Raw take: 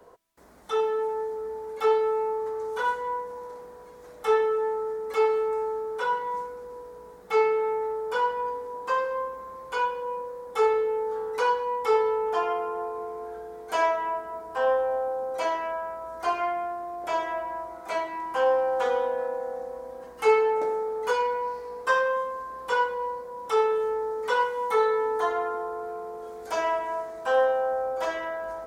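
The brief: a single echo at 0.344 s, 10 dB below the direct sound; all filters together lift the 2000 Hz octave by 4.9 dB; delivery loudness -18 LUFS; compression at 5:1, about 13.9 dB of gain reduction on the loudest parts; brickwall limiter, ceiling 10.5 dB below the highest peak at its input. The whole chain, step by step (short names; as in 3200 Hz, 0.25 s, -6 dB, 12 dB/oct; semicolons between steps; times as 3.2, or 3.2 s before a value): bell 2000 Hz +7 dB; compressor 5:1, threshold -32 dBFS; limiter -30 dBFS; echo 0.344 s -10 dB; gain +19.5 dB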